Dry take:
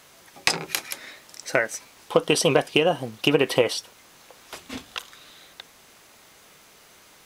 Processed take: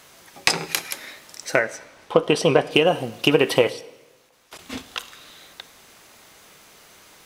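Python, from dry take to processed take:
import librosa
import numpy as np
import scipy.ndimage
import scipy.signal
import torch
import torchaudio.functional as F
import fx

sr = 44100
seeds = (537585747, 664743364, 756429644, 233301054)

y = fx.lowpass(x, sr, hz=2600.0, slope=6, at=(1.59, 2.71))
y = fx.level_steps(y, sr, step_db=21, at=(3.69, 4.59))
y = fx.rev_plate(y, sr, seeds[0], rt60_s=1.1, hf_ratio=0.95, predelay_ms=0, drr_db=15.5)
y = y * 10.0 ** (2.5 / 20.0)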